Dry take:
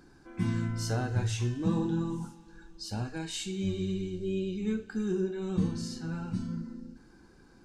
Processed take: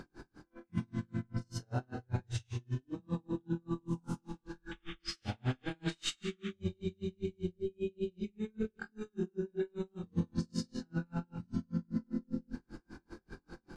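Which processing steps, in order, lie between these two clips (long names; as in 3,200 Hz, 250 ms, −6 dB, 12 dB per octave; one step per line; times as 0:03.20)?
high-shelf EQ 6,300 Hz −10 dB
reversed playback
downward compressor 12 to 1, threshold −41 dBFS, peak gain reduction 19 dB
reversed playback
time stretch by overlap-add 1.8×, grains 105 ms
sound drawn into the spectrogram noise, 0:04.71–0:06.53, 1,100–3,700 Hz −59 dBFS
on a send at −7 dB: convolution reverb RT60 0.45 s, pre-delay 38 ms
on the sum: tremolo with a sine in dB 5.1 Hz, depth 40 dB
level +12.5 dB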